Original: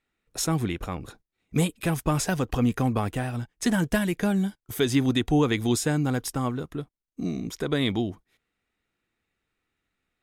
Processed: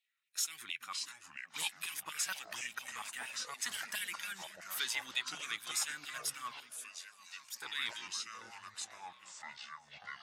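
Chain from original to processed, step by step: bin magnitudes rounded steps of 15 dB; passive tone stack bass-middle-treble 6-0-2; in parallel at -1.5 dB: limiter -37.5 dBFS, peak gain reduction 9.5 dB; on the sum: LFO high-pass saw down 4.3 Hz 940–3100 Hz; echoes that change speed 0.436 s, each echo -5 st, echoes 3, each echo -6 dB; 6.6–7.62 pre-emphasis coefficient 0.9; on a send: delay with a stepping band-pass 0.187 s, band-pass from 180 Hz, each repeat 0.7 oct, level -7 dB; on the sum: gain +6 dB

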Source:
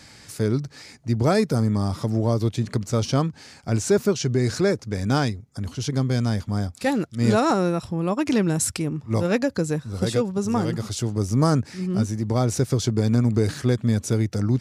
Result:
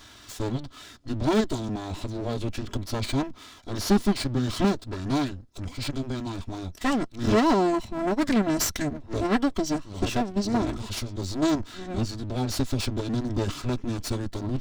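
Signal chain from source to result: minimum comb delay 3 ms; formant shift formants -5 st

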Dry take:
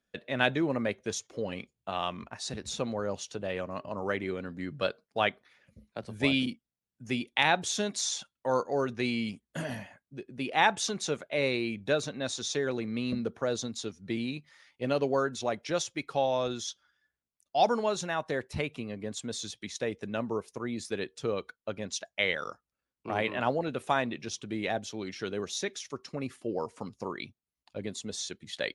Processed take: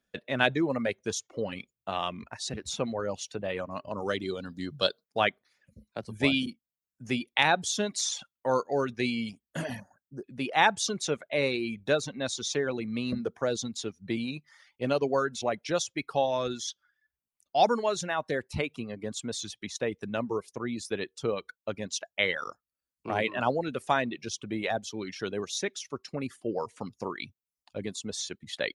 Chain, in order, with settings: 9.8–10.24 elliptic band-stop 1500–5300 Hz; reverb removal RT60 0.62 s; 4–5.04 resonant high shelf 2900 Hz +6 dB, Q 3; gain +2 dB

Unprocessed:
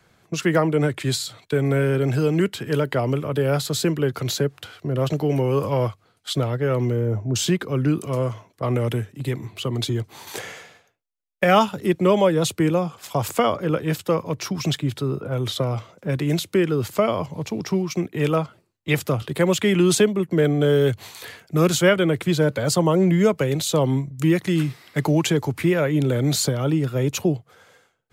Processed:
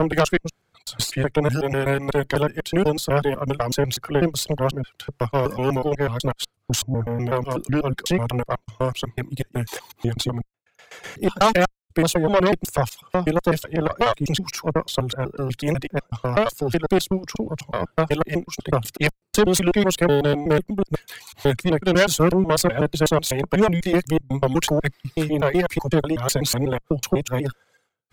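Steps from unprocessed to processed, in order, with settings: slices in reverse order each 0.124 s, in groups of 6; added harmonics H 3 -17 dB, 5 -17 dB, 6 -16 dB, 7 -27 dB, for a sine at -5 dBFS; reverb removal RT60 0.94 s; gain +1 dB

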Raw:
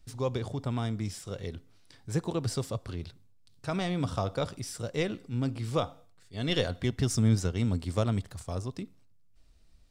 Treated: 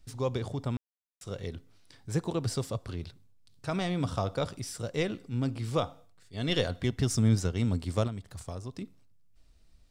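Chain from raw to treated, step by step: 0.77–1.21 mute; 8.07–8.81 compressor 10:1, threshold -34 dBFS, peak gain reduction 9.5 dB

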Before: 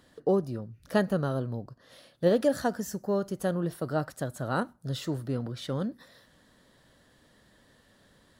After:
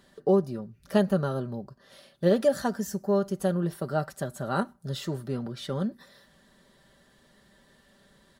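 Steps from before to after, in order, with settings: comb 5.1 ms, depth 53%

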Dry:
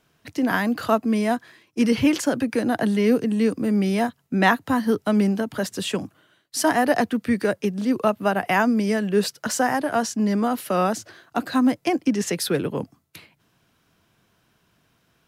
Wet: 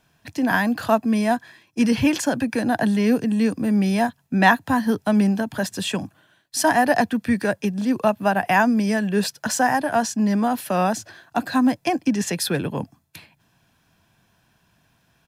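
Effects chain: comb 1.2 ms, depth 42%; gain +1 dB

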